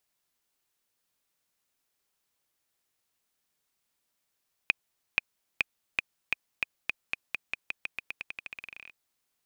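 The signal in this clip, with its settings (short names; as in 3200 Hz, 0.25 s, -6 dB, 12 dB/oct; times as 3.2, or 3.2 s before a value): bouncing ball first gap 0.48 s, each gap 0.89, 2490 Hz, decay 17 ms -7.5 dBFS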